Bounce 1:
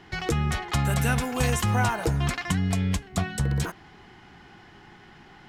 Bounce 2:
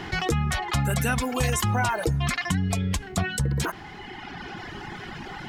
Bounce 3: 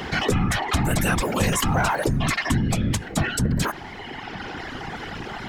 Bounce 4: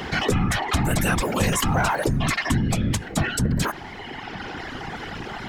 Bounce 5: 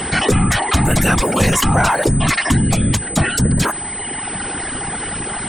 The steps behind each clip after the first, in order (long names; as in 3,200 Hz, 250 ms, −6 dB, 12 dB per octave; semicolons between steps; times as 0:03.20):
reverb reduction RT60 1.4 s; envelope flattener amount 50%
random phases in short frames; in parallel at −4 dB: soft clipping −23.5 dBFS, distortion −11 dB
no processing that can be heard
steady tone 8,100 Hz −31 dBFS; level +6.5 dB